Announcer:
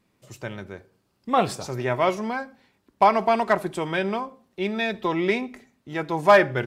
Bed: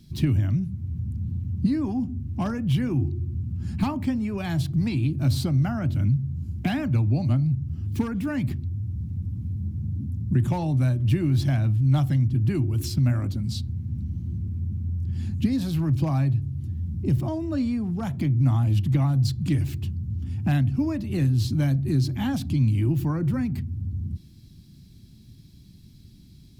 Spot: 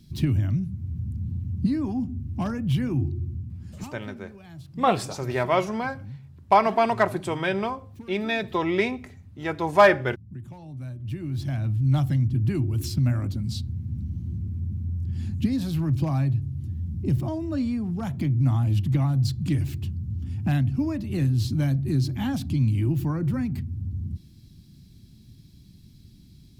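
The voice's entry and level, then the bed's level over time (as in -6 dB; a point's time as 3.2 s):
3.50 s, -0.5 dB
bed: 3.25 s -1 dB
4.03 s -17.5 dB
10.58 s -17.5 dB
11.88 s -1 dB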